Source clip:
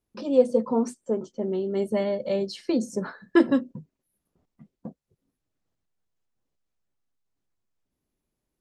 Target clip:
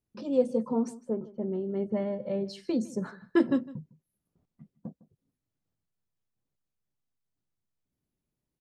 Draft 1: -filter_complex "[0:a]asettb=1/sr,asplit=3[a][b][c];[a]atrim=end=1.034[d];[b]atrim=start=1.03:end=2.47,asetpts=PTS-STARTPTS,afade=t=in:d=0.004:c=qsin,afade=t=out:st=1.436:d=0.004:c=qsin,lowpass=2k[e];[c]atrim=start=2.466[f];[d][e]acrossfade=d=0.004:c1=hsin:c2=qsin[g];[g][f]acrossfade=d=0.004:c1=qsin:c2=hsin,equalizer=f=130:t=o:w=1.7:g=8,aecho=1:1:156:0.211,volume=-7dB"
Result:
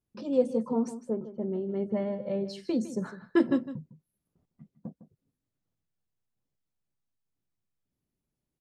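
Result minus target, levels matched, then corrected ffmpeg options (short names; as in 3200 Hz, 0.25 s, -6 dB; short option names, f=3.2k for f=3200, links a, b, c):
echo-to-direct +6 dB
-filter_complex "[0:a]asettb=1/sr,asplit=3[a][b][c];[a]atrim=end=1.034[d];[b]atrim=start=1.03:end=2.47,asetpts=PTS-STARTPTS,afade=t=in:d=0.004:c=qsin,afade=t=out:st=1.436:d=0.004:c=qsin,lowpass=2k[e];[c]atrim=start=2.466[f];[d][e]acrossfade=d=0.004:c1=hsin:c2=qsin[g];[g][f]acrossfade=d=0.004:c1=qsin:c2=hsin,equalizer=f=130:t=o:w=1.7:g=8,aecho=1:1:156:0.106,volume=-7dB"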